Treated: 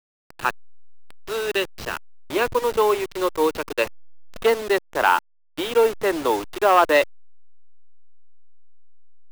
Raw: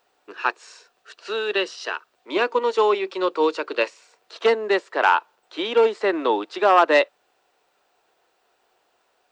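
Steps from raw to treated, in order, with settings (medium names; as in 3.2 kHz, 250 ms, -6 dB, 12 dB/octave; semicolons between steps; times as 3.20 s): send-on-delta sampling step -27 dBFS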